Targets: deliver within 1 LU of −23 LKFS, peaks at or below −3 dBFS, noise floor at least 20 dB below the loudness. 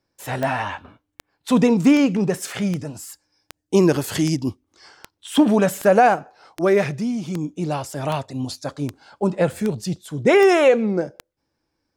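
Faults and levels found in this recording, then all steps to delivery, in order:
number of clicks 15; integrated loudness −20.0 LKFS; sample peak −5.0 dBFS; target loudness −23.0 LKFS
→ click removal
level −3 dB

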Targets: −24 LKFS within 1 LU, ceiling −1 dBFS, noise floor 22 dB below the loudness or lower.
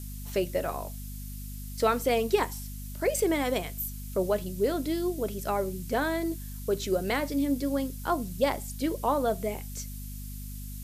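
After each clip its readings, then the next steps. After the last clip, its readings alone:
mains hum 50 Hz; hum harmonics up to 250 Hz; level of the hum −37 dBFS; background noise floor −39 dBFS; target noise floor −52 dBFS; integrated loudness −29.5 LKFS; sample peak −12.0 dBFS; target loudness −24.0 LKFS
→ mains-hum notches 50/100/150/200/250 Hz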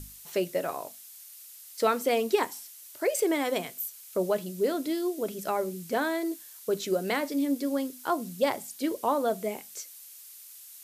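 mains hum none found; background noise floor −49 dBFS; target noise floor −52 dBFS
→ broadband denoise 6 dB, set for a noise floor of −49 dBFS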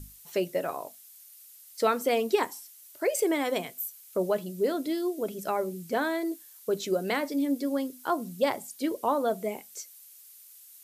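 background noise floor −52 dBFS; integrated loudness −30.0 LKFS; sample peak −12.0 dBFS; target loudness −24.0 LKFS
→ level +6 dB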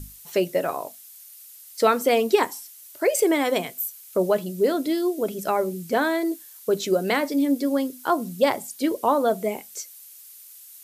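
integrated loudness −24.0 LKFS; sample peak −6.0 dBFS; background noise floor −46 dBFS

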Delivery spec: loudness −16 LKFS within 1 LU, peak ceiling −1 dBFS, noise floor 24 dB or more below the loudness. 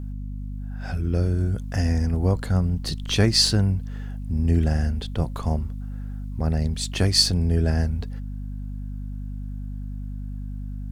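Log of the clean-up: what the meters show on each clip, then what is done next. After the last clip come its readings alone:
mains hum 50 Hz; hum harmonics up to 250 Hz; level of the hum −29 dBFS; integrated loudness −23.5 LKFS; sample peak −5.0 dBFS; target loudness −16.0 LKFS
→ hum removal 50 Hz, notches 5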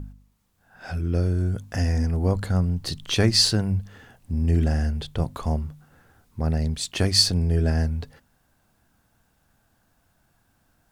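mains hum none found; integrated loudness −23.5 LKFS; sample peak −5.5 dBFS; target loudness −16.0 LKFS
→ level +7.5 dB
brickwall limiter −1 dBFS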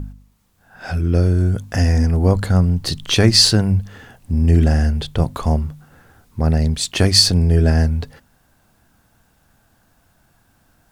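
integrated loudness −16.5 LKFS; sample peak −1.0 dBFS; background noise floor −59 dBFS

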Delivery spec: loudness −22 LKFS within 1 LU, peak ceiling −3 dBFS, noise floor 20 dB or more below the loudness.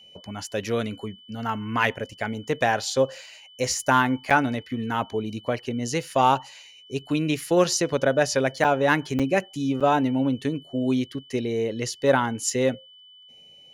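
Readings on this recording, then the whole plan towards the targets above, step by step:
number of dropouts 4; longest dropout 6.2 ms; interfering tone 3,000 Hz; level of the tone −48 dBFS; integrated loudness −24.5 LKFS; sample peak −4.5 dBFS; target loudness −22.0 LKFS
→ repair the gap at 0:04.30/0:08.64/0:09.19/0:09.80, 6.2 ms
notch filter 3,000 Hz, Q 30
level +2.5 dB
brickwall limiter −3 dBFS

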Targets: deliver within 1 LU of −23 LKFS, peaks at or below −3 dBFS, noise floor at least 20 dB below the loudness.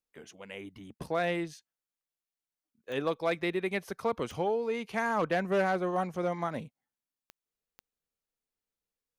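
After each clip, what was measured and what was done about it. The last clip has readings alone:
number of clicks 4; integrated loudness −32.0 LKFS; sample peak −19.0 dBFS; target loudness −23.0 LKFS
→ click removal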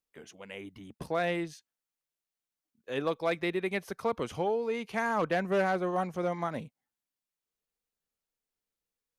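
number of clicks 0; integrated loudness −32.0 LKFS; sample peak −19.0 dBFS; target loudness −23.0 LKFS
→ level +9 dB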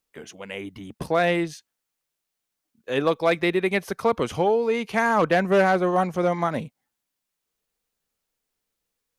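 integrated loudness −23.0 LKFS; sample peak −10.0 dBFS; background noise floor −82 dBFS

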